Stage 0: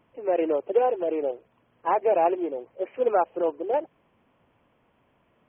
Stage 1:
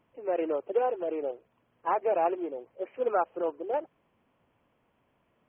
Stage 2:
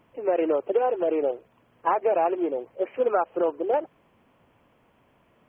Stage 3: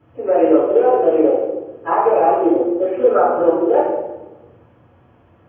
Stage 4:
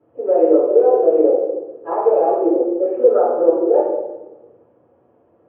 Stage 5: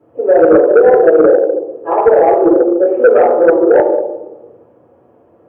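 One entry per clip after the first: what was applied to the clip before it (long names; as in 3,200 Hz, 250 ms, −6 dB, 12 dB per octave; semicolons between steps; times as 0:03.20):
dynamic equaliser 1,300 Hz, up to +6 dB, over −43 dBFS, Q 2.6; level −5.5 dB
downward compressor 5 to 1, threshold −28 dBFS, peak gain reduction 7.5 dB; level +9 dB
convolution reverb RT60 1.1 s, pre-delay 3 ms, DRR −10 dB; level −14 dB
resonant band-pass 470 Hz, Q 1.7; level +1.5 dB
sine wavefolder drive 5 dB, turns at −1 dBFS; level −1 dB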